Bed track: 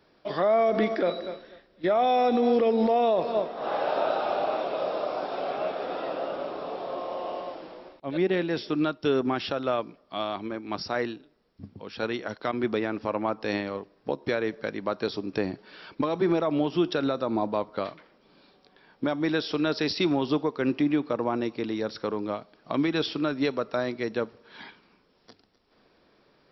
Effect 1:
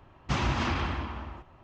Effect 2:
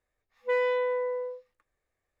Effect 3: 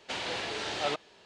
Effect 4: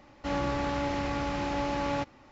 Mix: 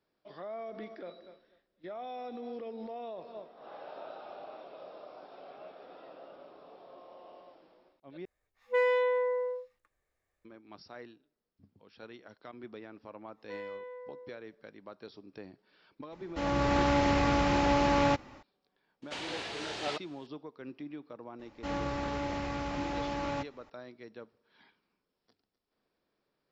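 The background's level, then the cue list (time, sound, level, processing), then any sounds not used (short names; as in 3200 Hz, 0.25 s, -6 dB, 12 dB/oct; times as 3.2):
bed track -19 dB
8.25 replace with 2 -0.5 dB
13.01 add 2 -16.5 dB
16.12 add 4 -3.5 dB + AGC gain up to 8 dB
19.02 add 3 -4.5 dB
21.39 add 4 -4.5 dB
not used: 1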